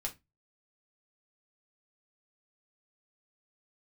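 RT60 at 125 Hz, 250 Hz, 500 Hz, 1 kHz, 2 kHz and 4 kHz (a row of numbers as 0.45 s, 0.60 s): 0.40 s, 0.30 s, 0.20 s, 0.20 s, 0.20 s, 0.15 s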